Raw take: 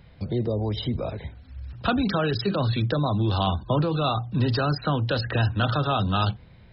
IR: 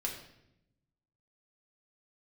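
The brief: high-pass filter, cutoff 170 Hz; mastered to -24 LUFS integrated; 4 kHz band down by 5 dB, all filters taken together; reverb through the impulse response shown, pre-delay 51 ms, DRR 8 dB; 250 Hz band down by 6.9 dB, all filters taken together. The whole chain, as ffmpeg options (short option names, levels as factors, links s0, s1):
-filter_complex "[0:a]highpass=170,equalizer=f=250:t=o:g=-7.5,equalizer=f=4000:t=o:g=-6,asplit=2[s0][s1];[1:a]atrim=start_sample=2205,adelay=51[s2];[s1][s2]afir=irnorm=-1:irlink=0,volume=0.316[s3];[s0][s3]amix=inputs=2:normalize=0,volume=1.68"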